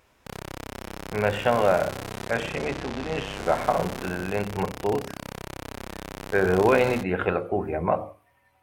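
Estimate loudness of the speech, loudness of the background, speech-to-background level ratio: -26.0 LUFS, -37.0 LUFS, 11.0 dB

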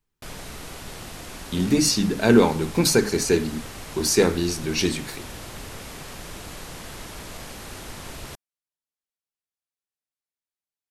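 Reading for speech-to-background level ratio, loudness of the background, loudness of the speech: 16.5 dB, -37.5 LUFS, -21.0 LUFS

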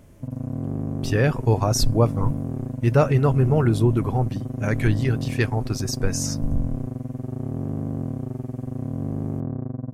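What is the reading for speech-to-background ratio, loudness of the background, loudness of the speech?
7.0 dB, -30.0 LUFS, -23.0 LUFS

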